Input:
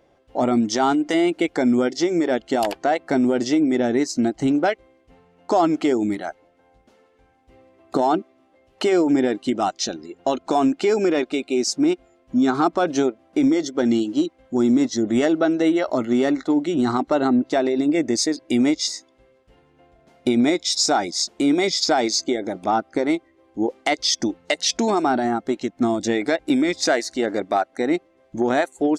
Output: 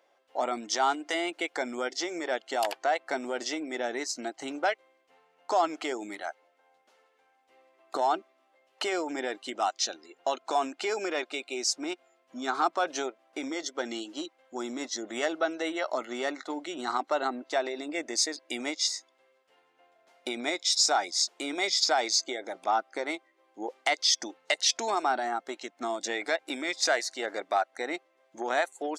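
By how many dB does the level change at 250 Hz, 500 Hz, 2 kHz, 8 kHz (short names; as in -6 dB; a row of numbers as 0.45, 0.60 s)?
-19.0, -10.5, -3.5, -3.5 dB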